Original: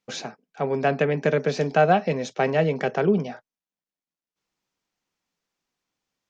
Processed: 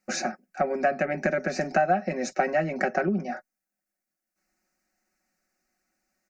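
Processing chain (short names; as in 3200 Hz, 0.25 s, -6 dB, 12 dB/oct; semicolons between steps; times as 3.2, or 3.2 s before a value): comb 5.4 ms, depth 62%; compressor 5:1, threshold -26 dBFS, peak gain reduction 14.5 dB; fixed phaser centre 670 Hz, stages 8; gain +7.5 dB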